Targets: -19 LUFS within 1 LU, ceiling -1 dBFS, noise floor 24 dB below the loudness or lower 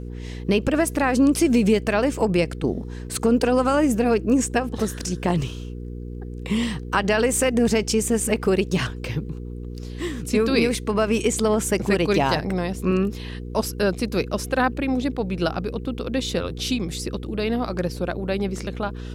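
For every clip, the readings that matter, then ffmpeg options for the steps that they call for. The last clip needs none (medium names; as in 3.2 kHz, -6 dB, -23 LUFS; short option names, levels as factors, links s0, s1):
hum 60 Hz; highest harmonic 480 Hz; hum level -31 dBFS; loudness -22.5 LUFS; peak level -8.0 dBFS; loudness target -19.0 LUFS
-> -af "bandreject=f=60:t=h:w=4,bandreject=f=120:t=h:w=4,bandreject=f=180:t=h:w=4,bandreject=f=240:t=h:w=4,bandreject=f=300:t=h:w=4,bandreject=f=360:t=h:w=4,bandreject=f=420:t=h:w=4,bandreject=f=480:t=h:w=4"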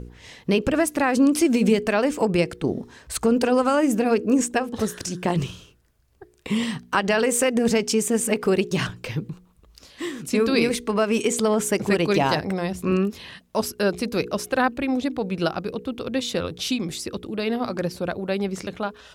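hum not found; loudness -23.0 LUFS; peak level -7.5 dBFS; loudness target -19.0 LUFS
-> -af "volume=1.58"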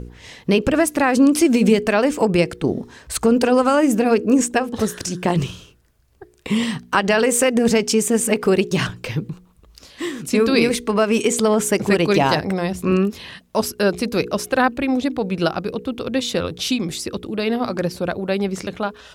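loudness -19.0 LUFS; peak level -3.5 dBFS; noise floor -52 dBFS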